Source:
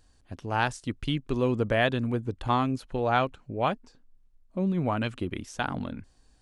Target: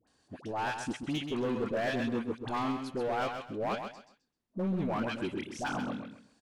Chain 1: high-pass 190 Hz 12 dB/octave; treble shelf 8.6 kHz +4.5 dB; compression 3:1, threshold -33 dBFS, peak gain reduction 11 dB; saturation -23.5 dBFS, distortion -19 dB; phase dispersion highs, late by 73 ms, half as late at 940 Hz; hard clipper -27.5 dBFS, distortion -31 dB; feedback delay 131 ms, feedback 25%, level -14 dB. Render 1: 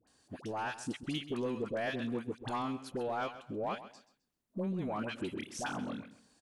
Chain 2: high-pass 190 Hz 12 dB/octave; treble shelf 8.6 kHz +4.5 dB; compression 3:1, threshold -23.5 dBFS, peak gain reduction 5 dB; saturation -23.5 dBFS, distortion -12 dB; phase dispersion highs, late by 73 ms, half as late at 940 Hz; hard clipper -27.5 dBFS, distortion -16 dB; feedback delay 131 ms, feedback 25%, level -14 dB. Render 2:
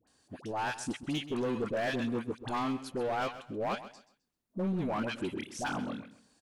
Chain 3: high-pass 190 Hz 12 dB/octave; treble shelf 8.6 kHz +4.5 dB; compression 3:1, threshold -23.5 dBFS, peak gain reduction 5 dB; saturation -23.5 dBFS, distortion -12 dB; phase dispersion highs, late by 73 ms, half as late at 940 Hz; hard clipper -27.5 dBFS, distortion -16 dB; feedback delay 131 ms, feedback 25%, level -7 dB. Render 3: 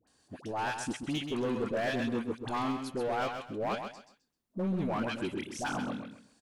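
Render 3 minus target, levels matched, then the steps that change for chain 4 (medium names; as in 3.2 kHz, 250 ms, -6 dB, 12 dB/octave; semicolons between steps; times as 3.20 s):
8 kHz band +4.0 dB
change: treble shelf 8.6 kHz -7.5 dB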